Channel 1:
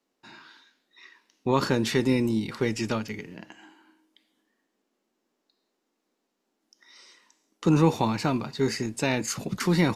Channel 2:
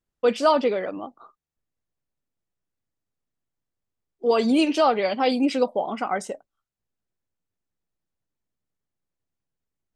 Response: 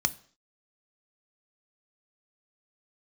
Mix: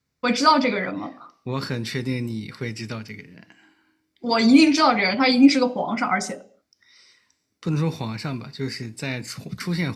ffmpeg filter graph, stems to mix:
-filter_complex "[0:a]volume=-3dB,asplit=2[a][b];[b]volume=-13.5dB[c];[1:a]volume=2.5dB,asplit=2[d][e];[e]volume=-3dB[f];[2:a]atrim=start_sample=2205[g];[c][f]amix=inputs=2:normalize=0[h];[h][g]afir=irnorm=-1:irlink=0[i];[a][d][i]amix=inputs=3:normalize=0,highpass=46"

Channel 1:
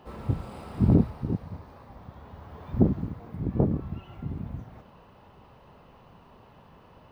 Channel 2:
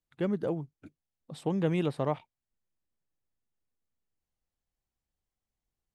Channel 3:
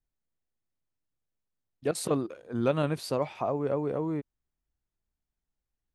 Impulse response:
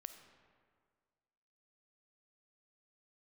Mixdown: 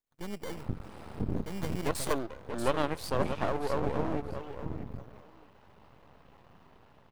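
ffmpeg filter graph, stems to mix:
-filter_complex "[0:a]adelay=400,volume=-7dB[a];[1:a]acrusher=samples=17:mix=1:aa=0.000001,volume=-5.5dB[b];[2:a]highpass=270,volume=2.5dB,asplit=2[c][d];[d]volume=-9.5dB[e];[a][b]amix=inputs=2:normalize=0,dynaudnorm=f=130:g=9:m=6dB,alimiter=limit=-19.5dB:level=0:latency=1:release=318,volume=0dB[f];[e]aecho=0:1:633|1266|1899:1|0.17|0.0289[g];[c][f][g]amix=inputs=3:normalize=0,aeval=exprs='max(val(0),0)':c=same"

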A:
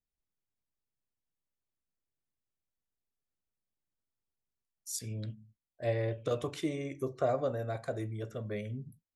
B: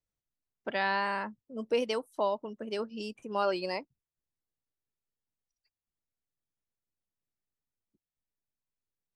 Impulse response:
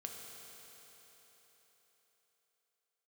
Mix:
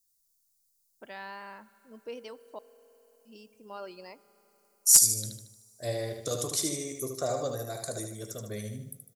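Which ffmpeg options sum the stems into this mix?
-filter_complex "[0:a]aexciter=amount=15.7:drive=2.1:freq=4.2k,volume=-2dB,asplit=3[a][b][c];[b]volume=-22.5dB[d];[c]volume=-5.5dB[e];[1:a]adelay=350,volume=-14dB,asplit=3[f][g][h];[f]atrim=end=2.59,asetpts=PTS-STARTPTS,afade=t=out:st=2.586:d=0.004:c=hsin[i];[g]atrim=start=2.59:end=3.25,asetpts=PTS-STARTPTS,volume=0[j];[h]atrim=start=3.25,asetpts=PTS-STARTPTS,afade=t=in:d=0.004:c=hsin[k];[i][j][k]concat=n=3:v=0:a=1,asplit=2[l][m];[m]volume=-10.5dB[n];[2:a]atrim=start_sample=2205[o];[d][n]amix=inputs=2:normalize=0[p];[p][o]afir=irnorm=-1:irlink=0[q];[e]aecho=0:1:76|152|228|304|380|456:1|0.45|0.202|0.0911|0.041|0.0185[r];[a][l][q][r]amix=inputs=4:normalize=0,aeval=exprs='clip(val(0),-1,0.355)':c=same"

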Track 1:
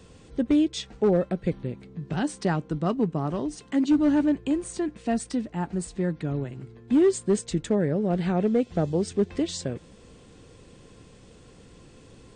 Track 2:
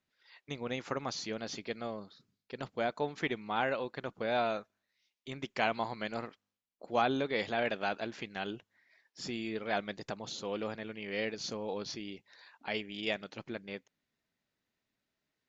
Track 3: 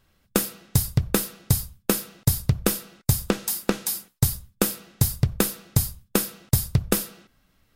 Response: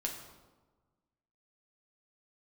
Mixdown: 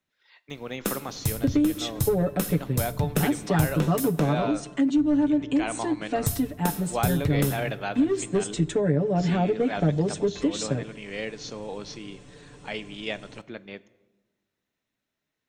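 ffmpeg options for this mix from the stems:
-filter_complex "[0:a]aecho=1:1:6.9:0.94,adelay=1050,volume=-1.5dB,asplit=2[a][b];[b]volume=-14dB[c];[1:a]volume=0.5dB,asplit=2[d][e];[e]volume=-13dB[f];[2:a]acompressor=mode=upward:threshold=-39dB:ratio=2.5,adelay=500,volume=-9.5dB,asplit=3[g][h][i];[g]atrim=end=4.33,asetpts=PTS-STARTPTS,afade=t=out:st=4.326:d=0.004:c=hsin[j];[h]atrim=start=4.33:end=6.18,asetpts=PTS-STARTPTS,volume=0[k];[i]atrim=start=6.18,asetpts=PTS-STARTPTS,afade=t=in:d=0.004:c=hsin[l];[j][k][l]concat=n=3:v=0:a=1,asplit=2[m][n];[n]volume=-5.5dB[o];[3:a]atrim=start_sample=2205[p];[c][f][o]amix=inputs=3:normalize=0[q];[q][p]afir=irnorm=-1:irlink=0[r];[a][d][m][r]amix=inputs=4:normalize=0,bandreject=f=4.7k:w=10,acrossover=split=160[s][t];[t]acompressor=threshold=-20dB:ratio=10[u];[s][u]amix=inputs=2:normalize=0"

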